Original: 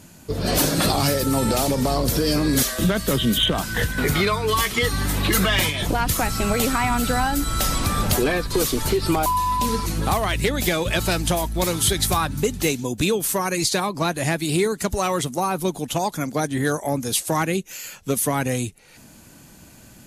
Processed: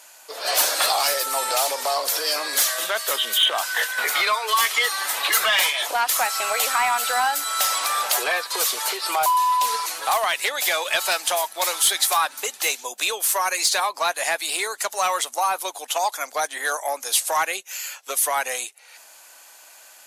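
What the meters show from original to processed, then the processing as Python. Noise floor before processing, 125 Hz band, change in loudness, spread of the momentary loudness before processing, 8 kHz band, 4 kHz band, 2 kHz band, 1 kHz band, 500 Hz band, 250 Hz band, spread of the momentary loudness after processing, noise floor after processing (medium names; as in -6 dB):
-47 dBFS, under -35 dB, +0.5 dB, 5 LU, +3.0 dB, +3.0 dB, +3.0 dB, +2.5 dB, -5.5 dB, -24.5 dB, 7 LU, -48 dBFS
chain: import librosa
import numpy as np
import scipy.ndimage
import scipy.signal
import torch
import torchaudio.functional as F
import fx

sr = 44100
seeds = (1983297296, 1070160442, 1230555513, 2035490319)

p1 = scipy.signal.sosfilt(scipy.signal.butter(4, 660.0, 'highpass', fs=sr, output='sos'), x)
p2 = np.clip(p1, -10.0 ** (-21.5 / 20.0), 10.0 ** (-21.5 / 20.0))
y = p1 + (p2 * 10.0 ** (-6.0 / 20.0))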